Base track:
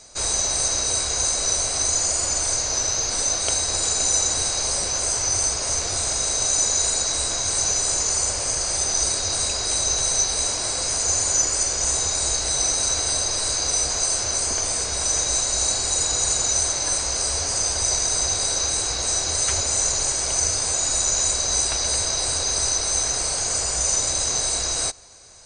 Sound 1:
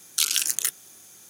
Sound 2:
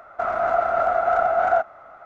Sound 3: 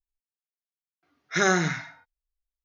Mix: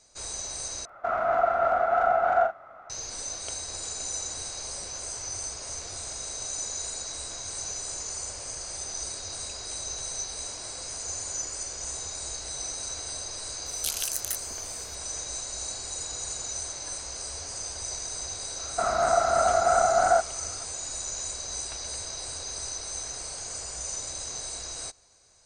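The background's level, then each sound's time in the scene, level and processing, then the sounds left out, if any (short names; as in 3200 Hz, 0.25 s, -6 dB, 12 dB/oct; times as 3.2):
base track -13 dB
0.85 replace with 2 -4 dB + doubler 44 ms -6.5 dB
13.66 add 1 -11 dB + high shelf 8100 Hz +7.5 dB
18.59 add 2 -3 dB + low shelf 280 Hz +7.5 dB
not used: 3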